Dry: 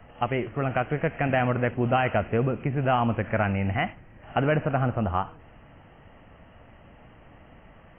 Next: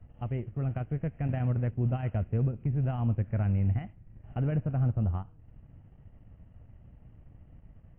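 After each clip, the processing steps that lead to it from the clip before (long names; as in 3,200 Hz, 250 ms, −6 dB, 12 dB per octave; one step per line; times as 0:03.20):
drawn EQ curve 110 Hz 0 dB, 270 Hz −11 dB, 1,100 Hz −22 dB
transient designer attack −1 dB, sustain −7 dB
level +3 dB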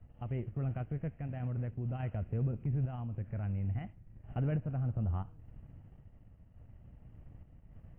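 brickwall limiter −26 dBFS, peak gain reduction 8 dB
sample-and-hold tremolo
level +1 dB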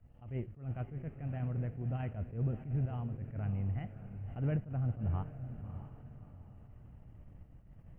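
feedback delay with all-pass diffusion 620 ms, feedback 41%, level −11 dB
level that may rise only so fast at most 150 dB per second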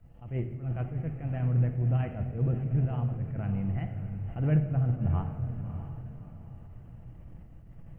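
rectangular room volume 1,100 cubic metres, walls mixed, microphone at 0.71 metres
level +5.5 dB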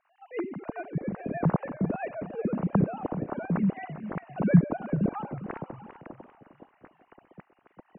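three sine waves on the formant tracks
feedback echo with a swinging delay time 398 ms, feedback 33%, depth 195 cents, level −13 dB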